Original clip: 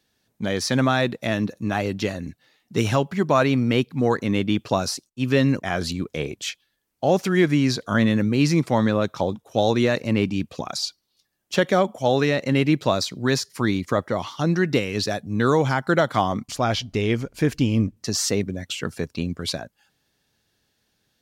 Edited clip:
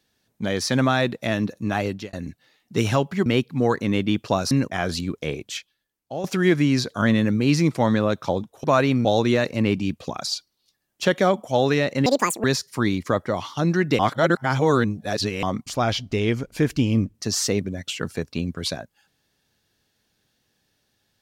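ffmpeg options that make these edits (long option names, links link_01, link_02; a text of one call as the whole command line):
ffmpeg -i in.wav -filter_complex "[0:a]asplit=11[link_01][link_02][link_03][link_04][link_05][link_06][link_07][link_08][link_09][link_10][link_11];[link_01]atrim=end=2.13,asetpts=PTS-STARTPTS,afade=type=out:start_time=1.87:duration=0.26[link_12];[link_02]atrim=start=2.13:end=3.262,asetpts=PTS-STARTPTS,afade=type=in:duration=0.004:curve=hsin[link_13];[link_03]atrim=start=3.668:end=4.922[link_14];[link_04]atrim=start=5.428:end=7.16,asetpts=PTS-STARTPTS,afade=type=out:start_time=0.732:duration=1:silence=0.237137[link_15];[link_05]atrim=start=7.16:end=9.562,asetpts=PTS-STARTPTS,afade=type=in:duration=0.004:curve=hsin:silence=0.237137[link_16];[link_06]atrim=start=3.258:end=3.672[link_17];[link_07]atrim=start=9.558:end=12.574[link_18];[link_08]atrim=start=12.57:end=13.26,asetpts=PTS-STARTPTS,asetrate=80262,aresample=44100,atrim=end_sample=16719,asetpts=PTS-STARTPTS[link_19];[link_09]atrim=start=13.256:end=14.812[link_20];[link_10]atrim=start=14.808:end=16.252,asetpts=PTS-STARTPTS,areverse[link_21];[link_11]atrim=start=16.248[link_22];[link_12][link_13]concat=n=2:v=0:a=1[link_23];[link_23][link_14]acrossfade=duration=0.004:curve1=hsin:curve2=hsin[link_24];[link_15][link_16]concat=n=2:v=0:a=1[link_25];[link_24][link_25]acrossfade=duration=0.004:curve1=hsin:curve2=hsin[link_26];[link_26][link_17]acrossfade=duration=0.004:curve1=hsin:curve2=hsin[link_27];[link_27][link_18]acrossfade=duration=0.004:curve1=hsin:curve2=hsin[link_28];[link_28][link_19]acrossfade=duration=0.004:curve1=hsin:curve2=hsin[link_29];[link_29][link_20]acrossfade=duration=0.004:curve1=hsin:curve2=hsin[link_30];[link_30][link_21]acrossfade=duration=0.004:curve1=hsin:curve2=hsin[link_31];[link_31][link_22]acrossfade=duration=0.004:curve1=hsin:curve2=hsin" out.wav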